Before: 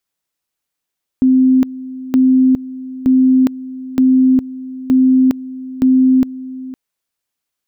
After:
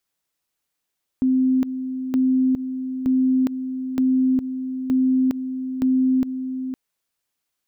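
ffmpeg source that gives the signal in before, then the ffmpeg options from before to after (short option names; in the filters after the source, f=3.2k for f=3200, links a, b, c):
-f lavfi -i "aevalsrc='pow(10,(-7-17.5*gte(mod(t,0.92),0.41))/20)*sin(2*PI*259*t)':d=5.52:s=44100"
-af "alimiter=limit=-15dB:level=0:latency=1:release=54"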